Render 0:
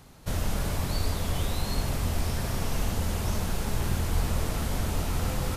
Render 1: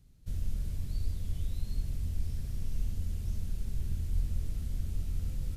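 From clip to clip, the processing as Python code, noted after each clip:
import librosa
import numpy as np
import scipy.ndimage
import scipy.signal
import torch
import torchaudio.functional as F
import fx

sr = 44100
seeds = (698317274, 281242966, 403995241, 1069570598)

y = fx.tone_stack(x, sr, knobs='10-0-1')
y = y * 10.0 ** (3.0 / 20.0)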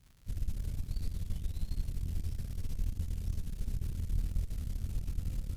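y = fx.dmg_crackle(x, sr, seeds[0], per_s=170.0, level_db=-47.0)
y = fx.cheby_harmonics(y, sr, harmonics=(4,), levels_db=(-14,), full_scale_db=-19.5)
y = y * 10.0 ** (-2.5 / 20.0)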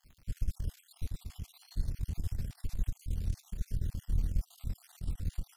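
y = fx.spec_dropout(x, sr, seeds[1], share_pct=48)
y = y * 10.0 ** (2.5 / 20.0)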